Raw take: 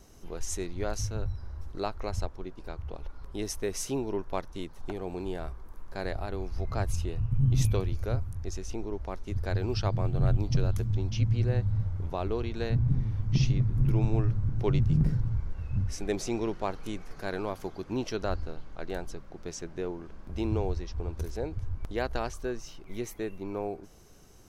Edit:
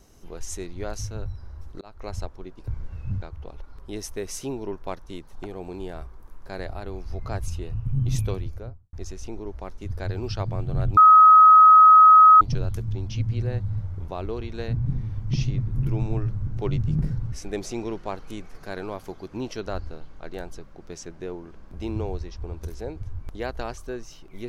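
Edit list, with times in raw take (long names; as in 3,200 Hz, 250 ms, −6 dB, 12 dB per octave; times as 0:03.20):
0:01.81–0:02.10: fade in
0:07.79–0:08.39: fade out and dull
0:10.43: insert tone 1,270 Hz −8 dBFS 1.44 s
0:15.34–0:15.88: move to 0:02.68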